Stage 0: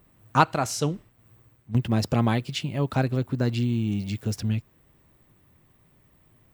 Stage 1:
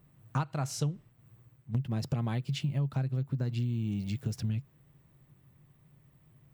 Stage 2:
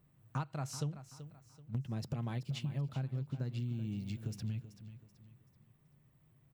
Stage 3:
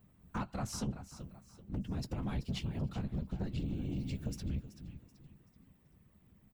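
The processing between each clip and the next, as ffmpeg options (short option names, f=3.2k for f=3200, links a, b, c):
-af "equalizer=f=140:t=o:w=0.48:g=14.5,acompressor=threshold=-21dB:ratio=10,volume=-6.5dB"
-af "aecho=1:1:382|764|1146|1528:0.224|0.0806|0.029|0.0104,volume=-6.5dB"
-filter_complex "[0:a]afftfilt=real='hypot(re,im)*cos(2*PI*random(0))':imag='hypot(re,im)*sin(2*PI*random(1))':win_size=512:overlap=0.75,aeval=exprs='0.0355*sin(PI/2*2*val(0)/0.0355)':c=same,asplit=2[a][b];[b]adelay=15,volume=-12.5dB[c];[a][c]amix=inputs=2:normalize=0,volume=-1.5dB"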